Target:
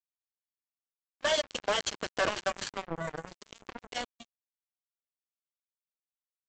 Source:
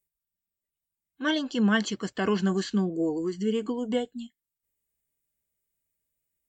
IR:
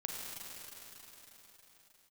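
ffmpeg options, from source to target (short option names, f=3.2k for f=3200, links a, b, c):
-af "afftfilt=real='re*lt(hypot(re,im),0.2)':imag='im*lt(hypot(re,im),0.2)':win_size=1024:overlap=0.75,equalizer=f=600:t=o:w=0.32:g=10,aresample=16000,acrusher=bits=4:mix=0:aa=0.5,aresample=44100,volume=2.5dB"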